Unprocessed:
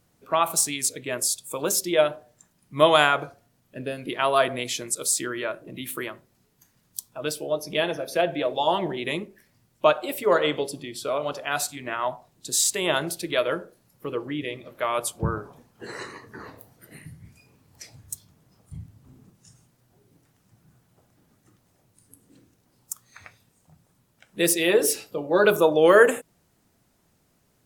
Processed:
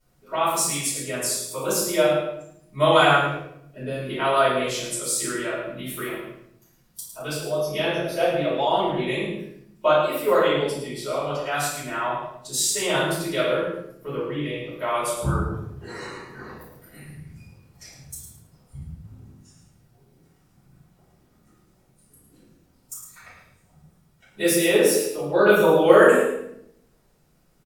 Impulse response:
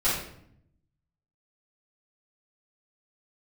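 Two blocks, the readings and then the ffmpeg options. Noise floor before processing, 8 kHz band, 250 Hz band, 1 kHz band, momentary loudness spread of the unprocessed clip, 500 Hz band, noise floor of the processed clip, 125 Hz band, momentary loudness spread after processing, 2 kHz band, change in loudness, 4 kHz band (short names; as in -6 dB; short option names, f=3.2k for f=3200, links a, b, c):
-67 dBFS, -0.5 dB, +3.5 dB, +2.0 dB, 19 LU, +2.5 dB, -61 dBFS, +6.0 dB, 21 LU, +1.5 dB, +1.5 dB, +0.5 dB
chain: -filter_complex "[0:a]aecho=1:1:107|214|321:0.398|0.0916|0.0211[a];[1:a]atrim=start_sample=2205[b];[a][b]afir=irnorm=-1:irlink=0,volume=-11dB"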